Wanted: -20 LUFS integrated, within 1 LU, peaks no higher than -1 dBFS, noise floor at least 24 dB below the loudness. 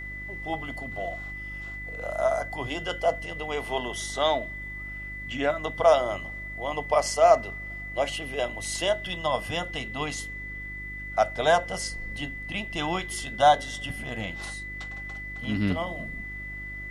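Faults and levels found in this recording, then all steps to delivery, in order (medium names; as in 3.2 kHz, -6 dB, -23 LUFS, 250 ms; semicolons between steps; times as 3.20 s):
hum 50 Hz; highest harmonic 350 Hz; hum level -39 dBFS; steady tone 2 kHz; tone level -36 dBFS; loudness -28.0 LUFS; peak level -7.0 dBFS; loudness target -20.0 LUFS
-> de-hum 50 Hz, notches 7; band-stop 2 kHz, Q 30; trim +8 dB; peak limiter -1 dBFS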